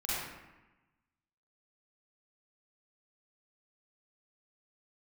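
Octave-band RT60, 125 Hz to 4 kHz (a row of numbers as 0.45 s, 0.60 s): 1.4 s, 1.3 s, 1.0 s, 1.1 s, 1.1 s, 0.70 s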